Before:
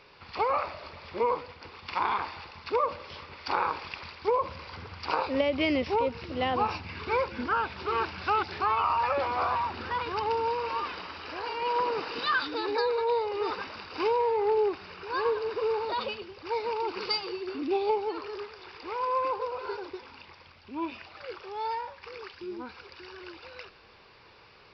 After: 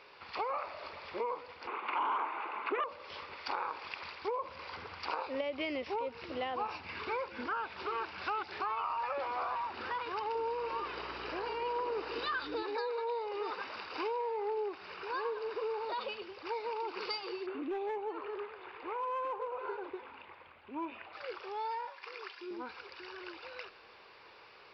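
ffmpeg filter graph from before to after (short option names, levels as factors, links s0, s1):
-filter_complex "[0:a]asettb=1/sr,asplit=3[s0][s1][s2];[s0]atrim=end=1.674[s3];[s1]atrim=start=1.67:end=2.84,asetpts=PTS-STARTPTS,afade=t=in:d=0.004:c=qsin,afade=t=out:st=1.166:d=0.004:c=qsin,aeval=exprs='0.2*sin(PI/2*3.55*val(0)/0.2)':c=same,highpass=f=290:w=0.5412,highpass=f=290:w=1.3066,equalizer=f=290:t=q:w=4:g=3,equalizer=f=520:t=q:w=4:g=-7,equalizer=f=740:t=q:w=4:g=-3,equalizer=f=1800:t=q:w=4:g=-9,lowpass=f=2200:w=0.5412,lowpass=f=2200:w=1.3066[s4];[s2]atrim=start=2.836[s5];[s3][s4]acrossfade=d=0.004:c1=hsin:c2=qsin[s6];[s6][s5]acrossfade=d=0.004:c1=qsin:c2=hsin,asettb=1/sr,asplit=3[s7][s8][s9];[s7]atrim=end=10.354[s10];[s8]atrim=start=10.35:end=12.63,asetpts=PTS-STARTPTS,afade=t=in:d=0.004:c=qsin,afade=t=out:st=2.276:d=0.004:c=qsin,equalizer=f=380:w=1.8:g=8.5,aeval=exprs='val(0)+0.00794*(sin(2*PI*60*n/s)+sin(2*PI*2*60*n/s)/2+sin(2*PI*3*60*n/s)/3+sin(2*PI*4*60*n/s)/4+sin(2*PI*5*60*n/s)/5)':c=same[s11];[s9]atrim=start=12.626[s12];[s10][s11]acrossfade=d=0.004:c1=hsin:c2=qsin[s13];[s13][s12]acrossfade=d=0.004:c1=qsin:c2=hsin,asettb=1/sr,asplit=3[s14][s15][s16];[s14]atrim=end=17.464[s17];[s15]atrim=start=17.46:end=21.13,asetpts=PTS-STARTPTS,afade=t=in:d=0.004:c=qsin,afade=t=out:st=3.666:d=0.004:c=qsin,lowpass=f=3600:w=0.5412,lowpass=f=3600:w=1.3066,asoftclip=type=hard:threshold=0.0562,aemphasis=mode=reproduction:type=75fm[s18];[s16]atrim=start=21.126[s19];[s17][s18]acrossfade=d=0.004:c1=hsin:c2=qsin[s20];[s20][s19]acrossfade=d=0.004:c1=qsin:c2=hsin,asettb=1/sr,asplit=3[s21][s22][s23];[s21]atrim=end=21.874[s24];[s22]atrim=start=21.87:end=22.51,asetpts=PTS-STARTPTS,afade=t=in:d=0.004:c=qsin,afade=t=out:st=0.636:d=0.004:c=qsin,highpass=f=560:p=1,aecho=1:1:2.9:0.3,atrim=end_sample=28224[s25];[s23]atrim=start=22.506[s26];[s24][s25]acrossfade=d=0.004:c1=hsin:c2=qsin[s27];[s27][s26]acrossfade=d=0.004:c1=qsin:c2=hsin,bass=f=250:g=-13,treble=f=4000:g=-5,acompressor=threshold=0.0141:ratio=2.5"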